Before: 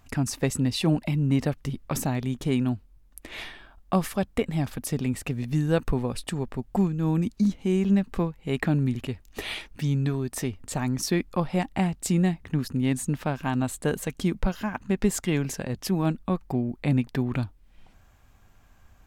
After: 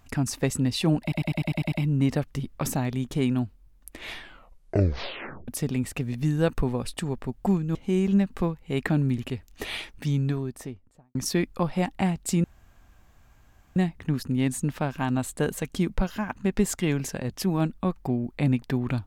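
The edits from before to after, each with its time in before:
1.02 stutter 0.10 s, 8 plays
3.49 tape stop 1.29 s
7.05–7.52 cut
9.89–10.92 studio fade out
12.21 insert room tone 1.32 s

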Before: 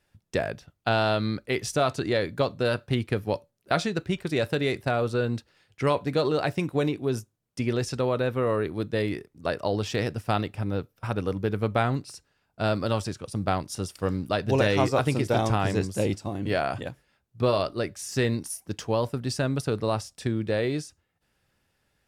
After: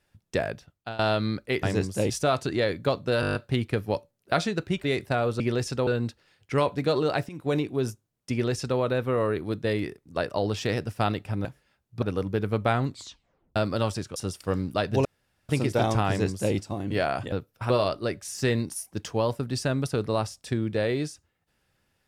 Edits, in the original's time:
0.52–0.99 fade out, to -19.5 dB
2.74 stutter 0.02 s, 8 plays
4.23–4.6 cut
6.58–6.83 fade in, from -20 dB
7.61–8.08 copy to 5.16
10.74–11.12 swap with 16.87–17.44
11.98 tape stop 0.68 s
13.26–13.71 cut
14.6–15.04 room tone
15.63–16.1 copy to 1.63

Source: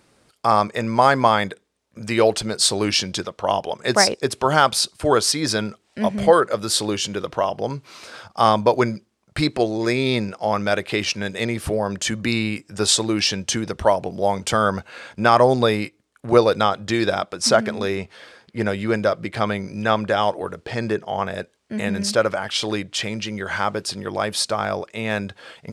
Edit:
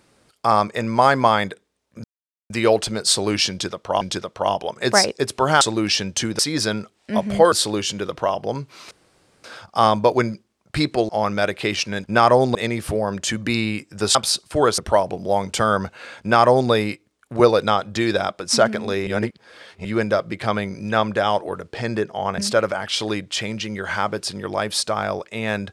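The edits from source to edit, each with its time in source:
2.04 insert silence 0.46 s
3.04–3.55 loop, 2 plays
4.64–5.27 swap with 12.93–13.71
6.4–6.67 cut
8.06 insert room tone 0.53 s
9.71–10.38 cut
15.13–15.64 copy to 11.33
18–18.78 reverse
21.31–22 cut

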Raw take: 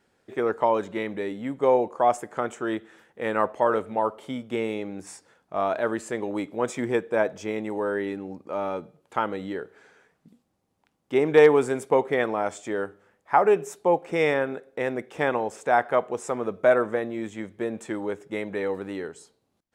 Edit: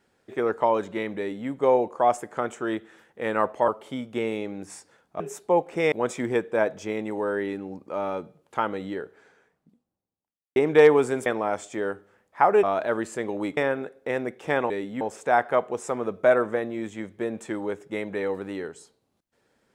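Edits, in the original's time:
1.18–1.49 copy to 15.41
3.68–4.05 cut
5.57–6.51 swap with 13.56–14.28
9.41–11.15 studio fade out
11.85–12.19 cut

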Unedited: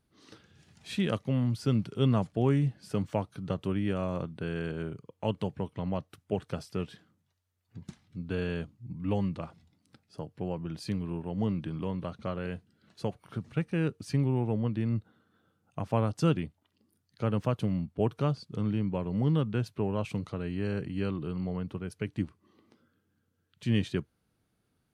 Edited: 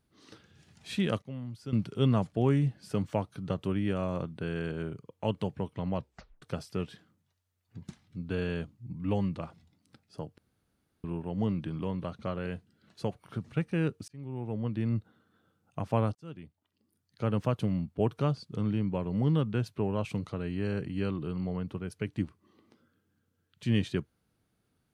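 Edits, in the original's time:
1.22–1.73 gain -11.5 dB
5.97 tape stop 0.45 s
10.38–11.04 room tone
14.08–14.87 fade in
16.15–17.33 fade in

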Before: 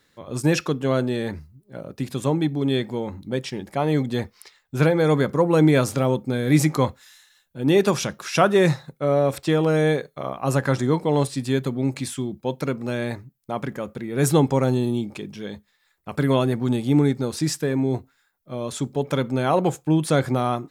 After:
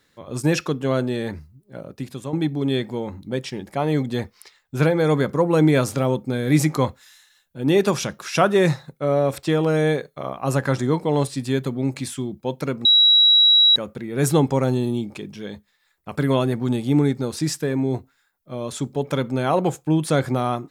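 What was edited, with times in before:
1.79–2.33 fade out, to -10 dB
12.85–13.76 bleep 3880 Hz -10.5 dBFS

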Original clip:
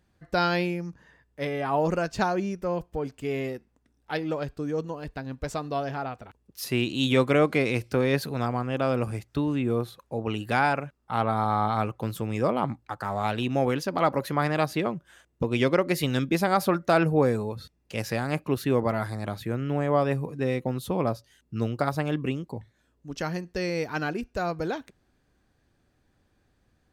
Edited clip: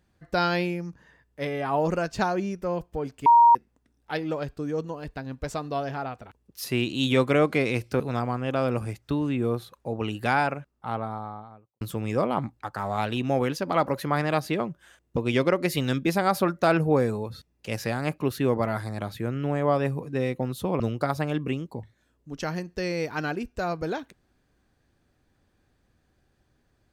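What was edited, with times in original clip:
3.26–3.55 bleep 940 Hz -11.5 dBFS
8–8.26 cut
10.59–12.07 studio fade out
21.06–21.58 cut

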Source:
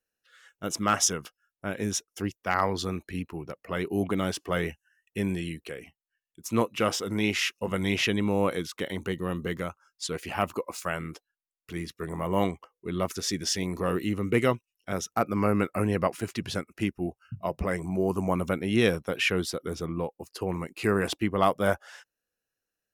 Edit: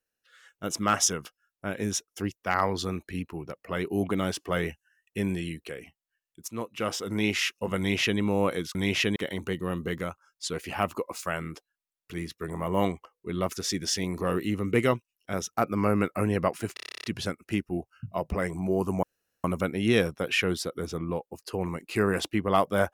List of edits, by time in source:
6.48–7.2 fade in, from -13.5 dB
7.78–8.19 copy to 8.75
16.33 stutter 0.03 s, 11 plays
18.32 insert room tone 0.41 s

